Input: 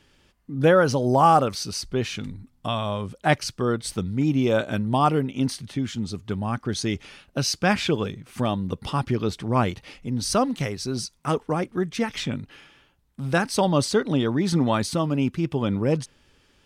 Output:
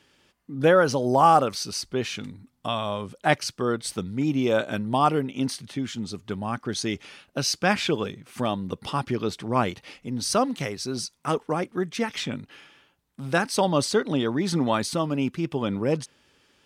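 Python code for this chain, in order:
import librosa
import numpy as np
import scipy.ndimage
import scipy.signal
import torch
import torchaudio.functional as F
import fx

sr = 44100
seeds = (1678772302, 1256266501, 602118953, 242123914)

y = fx.highpass(x, sr, hz=210.0, slope=6)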